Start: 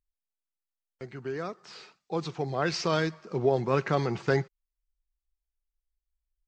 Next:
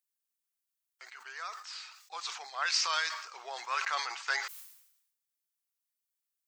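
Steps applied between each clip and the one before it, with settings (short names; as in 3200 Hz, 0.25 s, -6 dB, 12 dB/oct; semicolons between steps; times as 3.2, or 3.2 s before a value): HPF 1000 Hz 24 dB/oct; high shelf 5700 Hz +11 dB; sustainer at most 68 dB/s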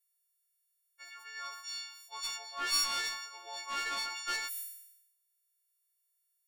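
frequency quantiser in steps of 4 st; one-sided clip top -29 dBFS; gain -7 dB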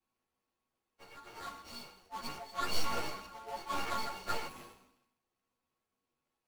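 median filter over 25 samples; ensemble effect; gain +9.5 dB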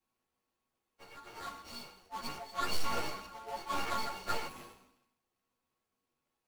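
hard clip -24.5 dBFS, distortion -19 dB; gain +1 dB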